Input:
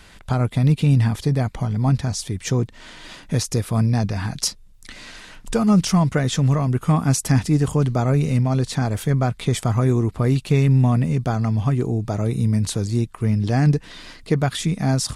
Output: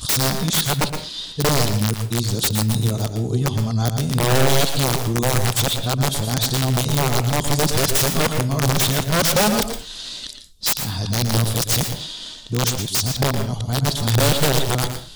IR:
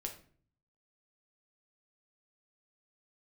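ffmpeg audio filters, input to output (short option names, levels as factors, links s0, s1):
-filter_complex "[0:a]areverse,highshelf=f=2800:t=q:w=3:g=8.5,aeval=exprs='(mod(3.55*val(0)+1,2)-1)/3.55':c=same,asplit=2[s0][s1];[1:a]atrim=start_sample=2205,atrim=end_sample=6174,adelay=115[s2];[s1][s2]afir=irnorm=-1:irlink=0,volume=0.531[s3];[s0][s3]amix=inputs=2:normalize=0,volume=0.841"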